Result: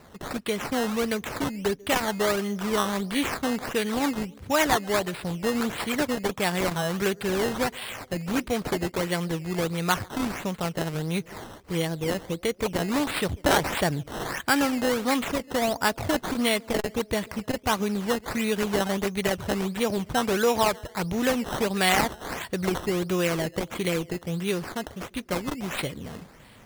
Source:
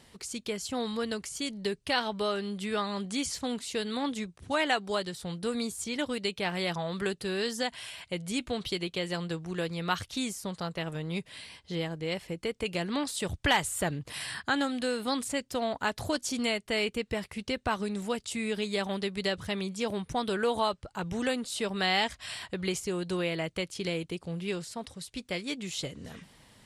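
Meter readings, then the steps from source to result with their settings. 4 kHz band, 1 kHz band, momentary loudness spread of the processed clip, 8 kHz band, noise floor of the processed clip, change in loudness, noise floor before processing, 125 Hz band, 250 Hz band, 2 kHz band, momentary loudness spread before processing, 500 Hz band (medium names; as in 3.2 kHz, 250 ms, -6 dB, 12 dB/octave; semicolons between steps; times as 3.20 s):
+2.0 dB, +6.0 dB, 8 LU, +4.5 dB, -51 dBFS, +5.5 dB, -62 dBFS, +6.5 dB, +6.0 dB, +5.0 dB, 8 LU, +6.0 dB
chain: band-passed feedback delay 142 ms, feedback 61%, band-pass 380 Hz, level -22.5 dB; decimation with a swept rate 13×, swing 100% 1.5 Hz; transformer saturation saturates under 580 Hz; trim +6.5 dB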